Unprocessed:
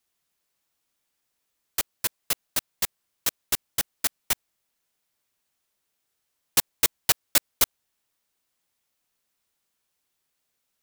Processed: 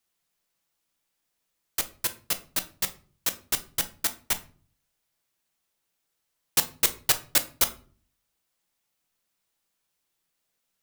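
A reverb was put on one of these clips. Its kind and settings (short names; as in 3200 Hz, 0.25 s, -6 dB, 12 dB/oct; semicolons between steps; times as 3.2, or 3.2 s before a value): shoebox room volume 340 m³, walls furnished, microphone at 0.72 m; gain -1.5 dB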